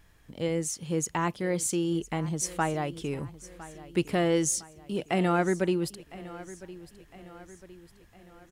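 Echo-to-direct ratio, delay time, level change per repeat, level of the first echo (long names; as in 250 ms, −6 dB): −16.5 dB, 1,008 ms, −6.0 dB, −17.5 dB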